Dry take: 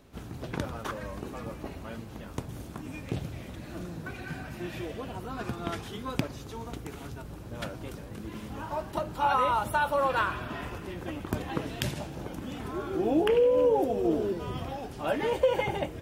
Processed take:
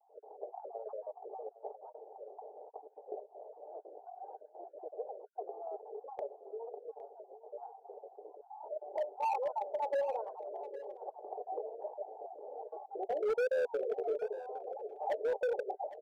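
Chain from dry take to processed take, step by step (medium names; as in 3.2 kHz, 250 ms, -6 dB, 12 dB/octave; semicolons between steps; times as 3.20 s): random holes in the spectrogram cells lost 36%; Chebyshev band-pass 400–830 Hz, order 4; tilt EQ +3.5 dB/octave; comb 6.7 ms, depth 36%; in parallel at +0.5 dB: compression 8:1, threshold -43 dBFS, peak gain reduction 19.5 dB; on the sum: vibrato 1.2 Hz 57 cents; hard clipper -27 dBFS, distortion -11 dB; vibrato 3.8 Hz 42 cents; on a send: delay 810 ms -16 dB; on the sum: trim -1.5 dB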